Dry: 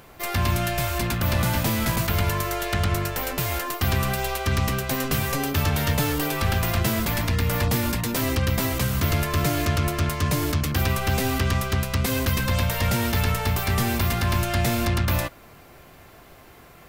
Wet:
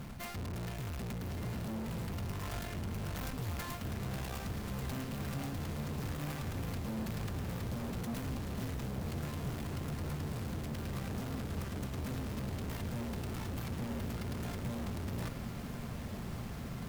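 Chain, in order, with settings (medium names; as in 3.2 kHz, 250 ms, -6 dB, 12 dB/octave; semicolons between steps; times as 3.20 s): square wave that keeps the level; resonant low shelf 280 Hz +8 dB, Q 3; reverse; compression, threshold -21 dBFS, peak gain reduction 16.5 dB; reverse; valve stage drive 34 dB, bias 0.4; echo that smears into a reverb 1219 ms, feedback 73%, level -7.5 dB; trim -4 dB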